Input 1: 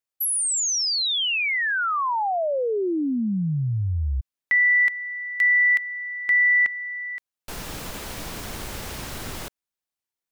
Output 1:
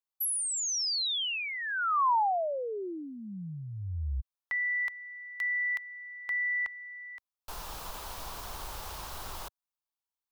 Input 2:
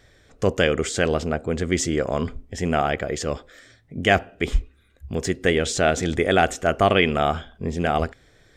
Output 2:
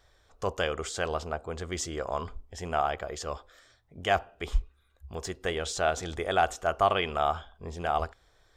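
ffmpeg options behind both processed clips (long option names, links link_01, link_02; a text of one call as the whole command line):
ffmpeg -i in.wav -af "equalizer=frequency=125:width_type=o:width=1:gain=-9,equalizer=frequency=250:width_type=o:width=1:gain=-12,equalizer=frequency=500:width_type=o:width=1:gain=-4,equalizer=frequency=1000:width_type=o:width=1:gain=7,equalizer=frequency=2000:width_type=o:width=1:gain=-9,equalizer=frequency=8000:width_type=o:width=1:gain=-4,volume=-4.5dB" out.wav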